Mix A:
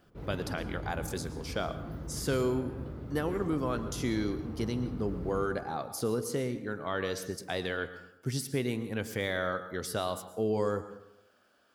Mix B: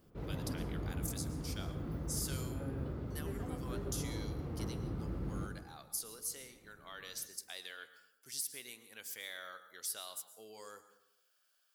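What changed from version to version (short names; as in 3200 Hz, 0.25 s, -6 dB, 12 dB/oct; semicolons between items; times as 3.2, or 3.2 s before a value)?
speech: add differentiator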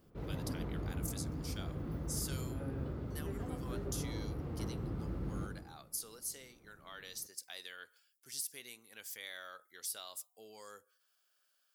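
speech: send off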